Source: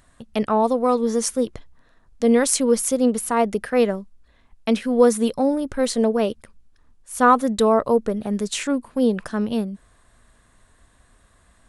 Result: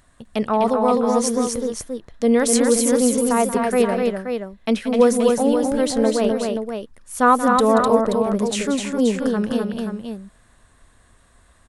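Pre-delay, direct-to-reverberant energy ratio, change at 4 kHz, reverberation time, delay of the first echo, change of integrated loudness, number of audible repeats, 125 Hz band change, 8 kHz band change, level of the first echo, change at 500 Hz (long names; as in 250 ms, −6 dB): no reverb audible, no reverb audible, +2.0 dB, no reverb audible, 181 ms, +1.5 dB, 3, can't be measured, +2.0 dB, −11.5 dB, +2.0 dB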